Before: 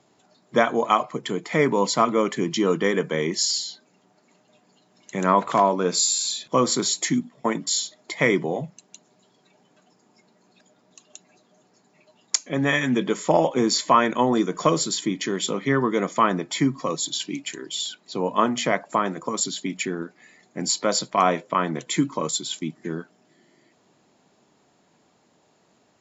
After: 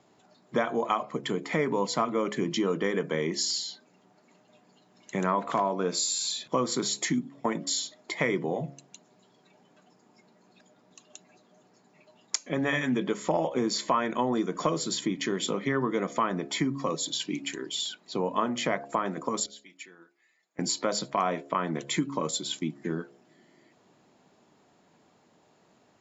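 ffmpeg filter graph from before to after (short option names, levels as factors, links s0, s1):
-filter_complex "[0:a]asettb=1/sr,asplit=3[s0][s1][s2];[s0]atrim=end=19.464[s3];[s1]atrim=start=19.46:end=20.59,asetpts=PTS-STARTPTS,afade=t=in:d=0.004:c=qsin,afade=t=out:st=1.126:d=0.004:c=qsin,lowpass=f=1500:p=1,aderivative,aecho=1:1:6.1:0.44,atrim=end_sample=49833[s4];[s2]atrim=start=20.586[s5];[s3][s4]acrossfade=d=0.004:c1=hsin:c2=qsin[s6];[s6][s5]acrossfade=d=0.004:c1=qsin:c2=hsin,highshelf=f=4300:g=-6,bandreject=f=69.57:t=h:w=4,bandreject=f=139.14:t=h:w=4,bandreject=f=208.71:t=h:w=4,bandreject=f=278.28:t=h:w=4,bandreject=f=347.85:t=h:w=4,bandreject=f=417.42:t=h:w=4,bandreject=f=486.99:t=h:w=4,bandreject=f=556.56:t=h:w=4,bandreject=f=626.13:t=h:w=4,bandreject=f=695.7:t=h:w=4,acompressor=threshold=0.0501:ratio=2.5"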